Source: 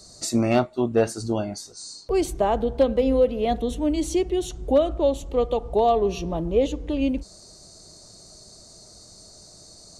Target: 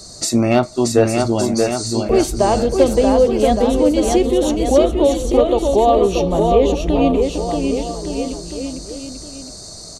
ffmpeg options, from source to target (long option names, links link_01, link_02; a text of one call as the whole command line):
ffmpeg -i in.wav -filter_complex "[0:a]asplit=2[link_01][link_02];[link_02]acompressor=threshold=-30dB:ratio=6,volume=1.5dB[link_03];[link_01][link_03]amix=inputs=2:normalize=0,aecho=1:1:630|1166|1621|2008|2336:0.631|0.398|0.251|0.158|0.1,volume=3.5dB" out.wav